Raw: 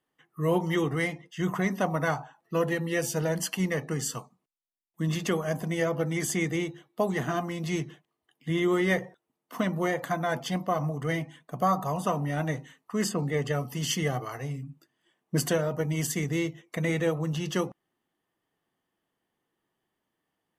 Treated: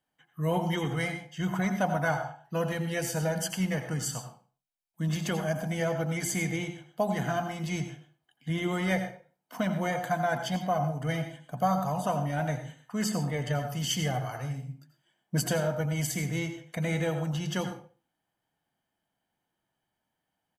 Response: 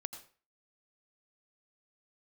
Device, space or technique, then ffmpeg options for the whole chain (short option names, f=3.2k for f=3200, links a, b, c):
microphone above a desk: -filter_complex "[0:a]aecho=1:1:1.3:0.54[a];[1:a]atrim=start_sample=2205[b];[a][b]afir=irnorm=-1:irlink=0"